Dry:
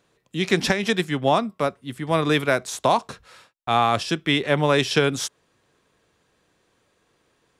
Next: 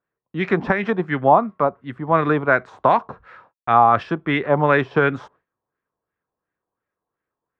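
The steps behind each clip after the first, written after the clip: LFO low-pass sine 2.8 Hz 900–1800 Hz; gate with hold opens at -43 dBFS; trim +1 dB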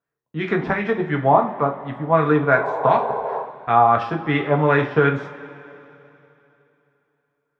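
painted sound noise, 2.52–3.43 s, 380–1100 Hz -24 dBFS; two-slope reverb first 0.32 s, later 3.1 s, from -18 dB, DRR 2 dB; trim -3 dB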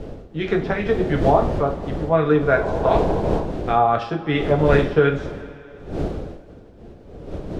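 wind noise 400 Hz -28 dBFS; graphic EQ 125/250/1000/2000 Hz -5/-6/-11/-7 dB; trim +5.5 dB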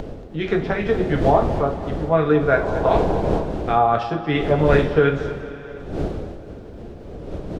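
upward compressor, threshold -28 dBFS; feedback delay 231 ms, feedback 48%, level -15 dB

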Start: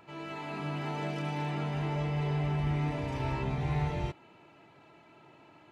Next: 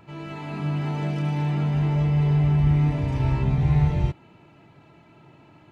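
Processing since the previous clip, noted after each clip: tone controls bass +11 dB, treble 0 dB; trim +2 dB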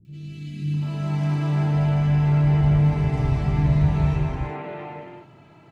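three bands offset in time lows, highs, mids 50/740 ms, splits 280/2800 Hz; gated-style reverb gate 420 ms flat, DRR -0.5 dB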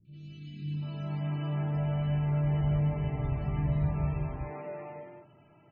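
loudest bins only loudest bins 64; feedback comb 600 Hz, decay 0.19 s, harmonics all, mix 70%

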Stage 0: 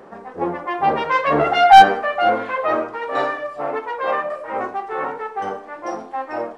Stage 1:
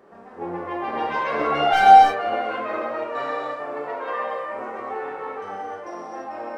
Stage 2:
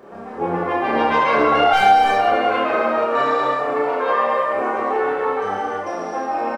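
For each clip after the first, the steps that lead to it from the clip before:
gated-style reverb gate 340 ms flat, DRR -5 dB; trim -11.5 dB
reverse bouncing-ball echo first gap 30 ms, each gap 1.3×, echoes 5; compression 3:1, threshold -21 dBFS, peak gain reduction 10.5 dB; band-stop 1.9 kHz, Q 19; trim +8 dB

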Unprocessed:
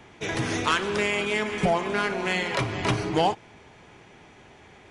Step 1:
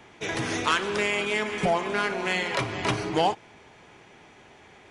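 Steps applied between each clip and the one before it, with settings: bass shelf 200 Hz -6 dB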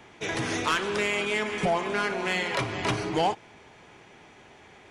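saturation -16 dBFS, distortion -19 dB

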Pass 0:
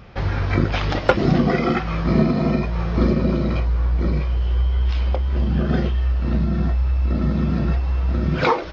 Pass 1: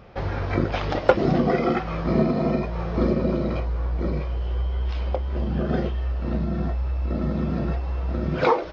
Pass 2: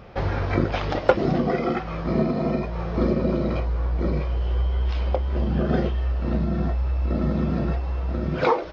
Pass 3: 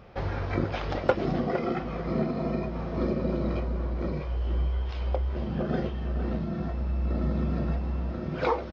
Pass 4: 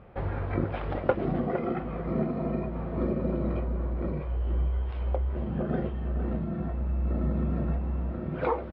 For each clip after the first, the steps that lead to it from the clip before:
peaking EQ 560 Hz +7.5 dB 1.9 oct; trim -6.5 dB
gain riding 2 s
echo from a far wall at 79 m, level -8 dB; trim -6 dB
distance through air 450 m

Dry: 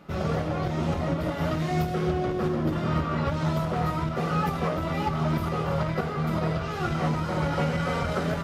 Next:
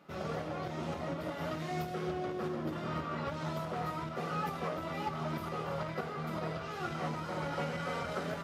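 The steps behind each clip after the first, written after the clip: high-pass 260 Hz 6 dB/octave; trim -7.5 dB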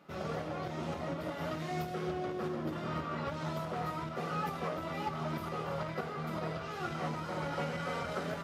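no audible change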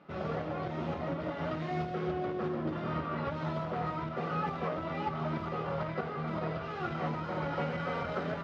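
distance through air 210 m; trim +3 dB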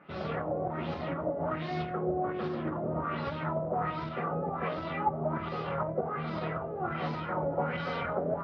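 LFO low-pass sine 1.3 Hz 560–4900 Hz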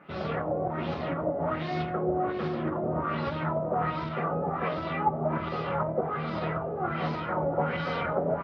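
delay 687 ms -12 dB; trim +3 dB

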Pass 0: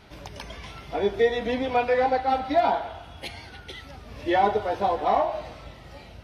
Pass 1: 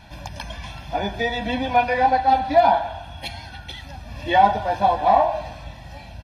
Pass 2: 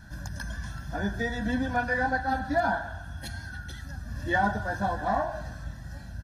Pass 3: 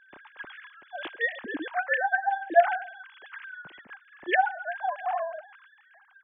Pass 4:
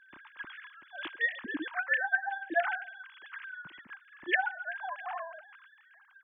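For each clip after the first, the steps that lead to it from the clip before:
comb 1.2 ms, depth 82%; trim +2.5 dB
FFT filter 210 Hz 0 dB, 890 Hz -14 dB, 1.6 kHz +5 dB, 2.3 kHz -21 dB, 6.4 kHz 0 dB
formants replaced by sine waves
high-order bell 570 Hz -10 dB 1.2 oct; trim -1.5 dB

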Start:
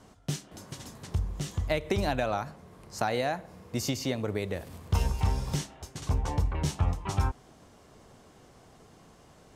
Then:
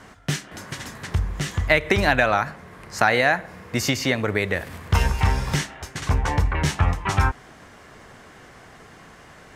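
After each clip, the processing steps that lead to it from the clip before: peaking EQ 1.8 kHz +12.5 dB 1.2 oct; trim +6.5 dB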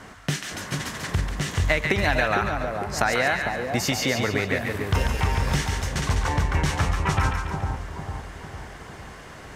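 compression 2:1, threshold -27 dBFS, peak gain reduction 8.5 dB; two-band feedback delay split 960 Hz, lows 452 ms, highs 141 ms, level -4 dB; trim +2.5 dB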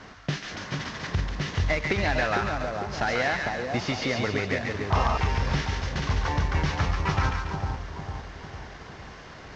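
CVSD coder 32 kbps; painted sound noise, 4.90–5.18 s, 600–1300 Hz -25 dBFS; trim -2 dB

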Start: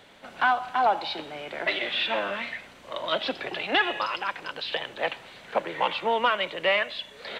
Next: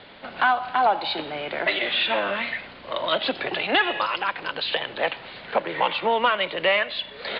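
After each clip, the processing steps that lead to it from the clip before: steep low-pass 4.8 kHz 96 dB/octave; in parallel at +1.5 dB: compression, threshold -31 dBFS, peak gain reduction 12.5 dB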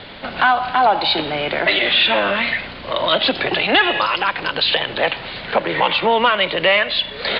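bass shelf 150 Hz +9 dB; in parallel at +1 dB: peak limiter -20 dBFS, peak gain reduction 10.5 dB; on the sum: treble shelf 3.7 kHz +6.5 dB; trim +1.5 dB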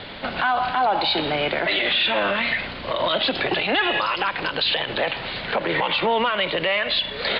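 peak limiter -13 dBFS, peak gain reduction 9 dB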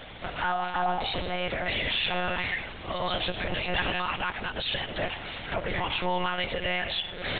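monotone LPC vocoder at 8 kHz 180 Hz; trim -7 dB

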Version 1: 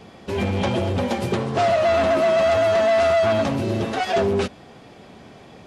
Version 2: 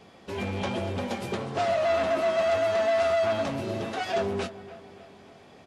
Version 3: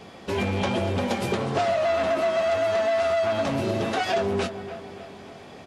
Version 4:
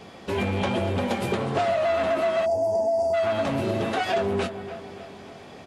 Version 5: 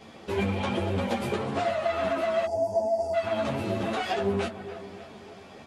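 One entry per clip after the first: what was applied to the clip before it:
bass shelf 280 Hz -5.5 dB; doubling 21 ms -11 dB; feedback echo behind a low-pass 290 ms, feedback 51%, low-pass 2.4 kHz, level -15.5 dB; trim -6.5 dB
compression, threshold -29 dBFS, peak gain reduction 8 dB; trim +8 dB
time-frequency box 2.45–3.14 s, 1–4.6 kHz -29 dB; dynamic bell 5.6 kHz, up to -5 dB, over -52 dBFS, Q 1.6
three-phase chorus

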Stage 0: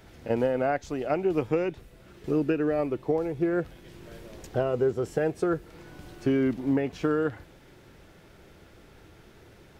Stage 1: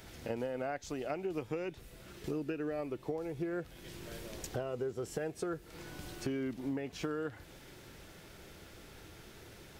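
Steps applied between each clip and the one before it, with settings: treble shelf 2.9 kHz +9 dB; compression 3:1, threshold -36 dBFS, peak gain reduction 12 dB; trim -1.5 dB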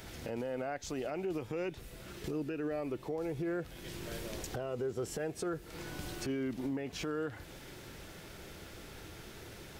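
peak limiter -32.5 dBFS, peak gain reduction 10 dB; trim +4 dB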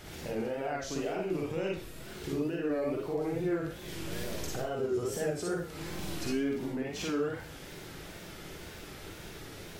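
Schroeder reverb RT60 0.41 s, DRR -2 dB; wow and flutter 95 cents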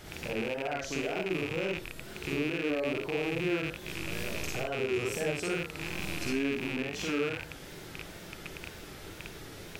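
rattle on loud lows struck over -43 dBFS, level -25 dBFS

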